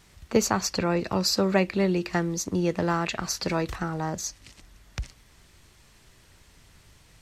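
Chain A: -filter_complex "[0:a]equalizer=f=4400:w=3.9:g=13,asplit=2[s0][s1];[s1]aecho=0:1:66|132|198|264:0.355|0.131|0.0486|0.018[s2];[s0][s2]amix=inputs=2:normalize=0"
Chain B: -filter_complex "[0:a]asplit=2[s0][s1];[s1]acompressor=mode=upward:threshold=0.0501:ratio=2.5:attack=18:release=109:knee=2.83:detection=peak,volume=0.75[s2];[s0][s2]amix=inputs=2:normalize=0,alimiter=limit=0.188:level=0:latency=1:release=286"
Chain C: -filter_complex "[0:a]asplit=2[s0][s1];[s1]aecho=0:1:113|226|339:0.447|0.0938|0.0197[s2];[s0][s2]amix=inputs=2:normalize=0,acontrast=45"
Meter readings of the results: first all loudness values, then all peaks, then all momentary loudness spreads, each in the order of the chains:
-23.0 LUFS, -26.0 LUFS, -20.0 LUFS; -3.5 dBFS, -14.5 dBFS, -3.5 dBFS; 19 LU, 16 LU, 16 LU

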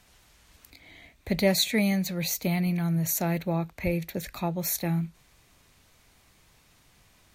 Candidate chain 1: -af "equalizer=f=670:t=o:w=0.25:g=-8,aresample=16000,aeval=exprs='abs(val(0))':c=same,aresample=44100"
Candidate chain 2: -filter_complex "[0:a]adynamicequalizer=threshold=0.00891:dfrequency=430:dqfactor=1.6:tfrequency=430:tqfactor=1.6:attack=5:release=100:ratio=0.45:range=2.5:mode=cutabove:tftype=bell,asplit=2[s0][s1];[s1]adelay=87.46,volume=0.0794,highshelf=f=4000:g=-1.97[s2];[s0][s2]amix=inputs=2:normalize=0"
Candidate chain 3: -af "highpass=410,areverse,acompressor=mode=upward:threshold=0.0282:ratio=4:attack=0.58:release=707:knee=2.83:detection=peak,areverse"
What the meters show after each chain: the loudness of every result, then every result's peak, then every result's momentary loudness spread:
-33.5 LUFS, -27.5 LUFS, -30.5 LUFS; -12.0 dBFS, -12.0 dBFS, -12.0 dBFS; 8 LU, 9 LU, 18 LU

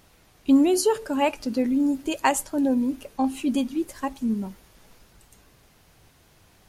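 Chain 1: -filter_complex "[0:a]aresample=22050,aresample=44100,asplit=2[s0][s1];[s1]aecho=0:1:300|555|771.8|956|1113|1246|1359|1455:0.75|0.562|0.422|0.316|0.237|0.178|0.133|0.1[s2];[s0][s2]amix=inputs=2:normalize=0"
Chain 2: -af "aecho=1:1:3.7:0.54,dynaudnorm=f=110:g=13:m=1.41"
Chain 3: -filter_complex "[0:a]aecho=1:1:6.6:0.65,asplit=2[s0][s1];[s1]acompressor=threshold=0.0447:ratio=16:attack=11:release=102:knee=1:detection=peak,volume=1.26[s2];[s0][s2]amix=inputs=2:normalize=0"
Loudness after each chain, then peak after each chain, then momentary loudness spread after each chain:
-21.5 LUFS, -19.5 LUFS, -19.5 LUFS; -7.0 dBFS, -3.5 dBFS, -3.5 dBFS; 15 LU, 8 LU, 10 LU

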